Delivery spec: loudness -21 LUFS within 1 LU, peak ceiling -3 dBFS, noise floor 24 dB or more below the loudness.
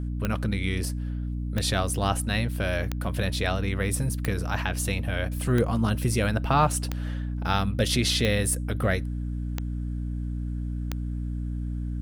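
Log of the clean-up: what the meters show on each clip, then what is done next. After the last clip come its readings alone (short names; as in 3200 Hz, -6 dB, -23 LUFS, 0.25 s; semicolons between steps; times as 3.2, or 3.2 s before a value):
clicks 9; hum 60 Hz; harmonics up to 300 Hz; hum level -28 dBFS; loudness -27.5 LUFS; peak -9.0 dBFS; loudness target -21.0 LUFS
-> de-click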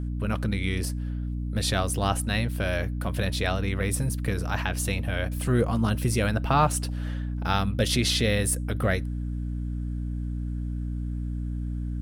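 clicks 0; hum 60 Hz; harmonics up to 300 Hz; hum level -28 dBFS
-> notches 60/120/180/240/300 Hz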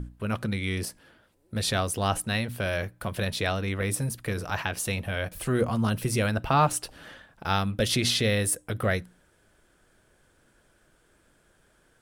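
hum none; loudness -27.5 LUFS; peak -10.0 dBFS; loudness target -21.0 LUFS
-> gain +6.5 dB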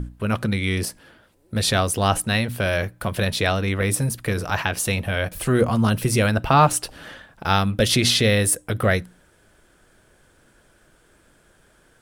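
loudness -21.0 LUFS; peak -3.5 dBFS; noise floor -58 dBFS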